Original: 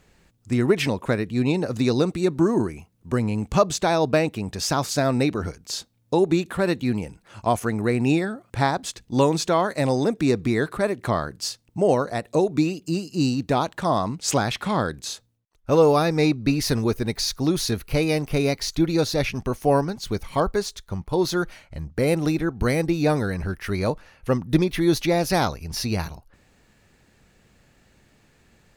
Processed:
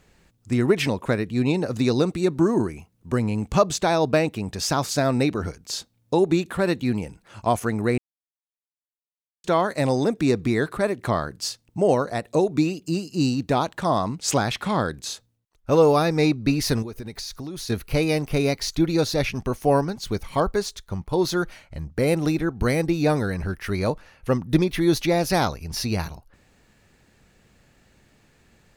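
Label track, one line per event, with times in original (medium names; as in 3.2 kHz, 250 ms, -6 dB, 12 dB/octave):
7.980000	9.440000	mute
16.820000	17.700000	compression 8:1, threshold -30 dBFS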